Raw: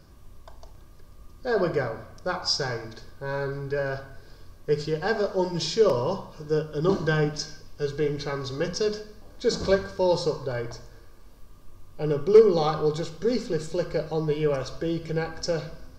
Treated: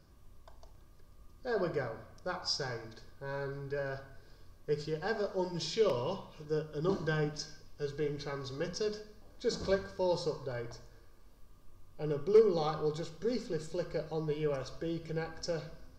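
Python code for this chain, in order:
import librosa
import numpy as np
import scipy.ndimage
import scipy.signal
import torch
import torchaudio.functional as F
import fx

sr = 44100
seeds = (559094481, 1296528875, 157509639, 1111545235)

y = fx.band_shelf(x, sr, hz=2800.0, db=8.0, octaves=1.1, at=(5.73, 6.45))
y = F.gain(torch.from_numpy(y), -9.0).numpy()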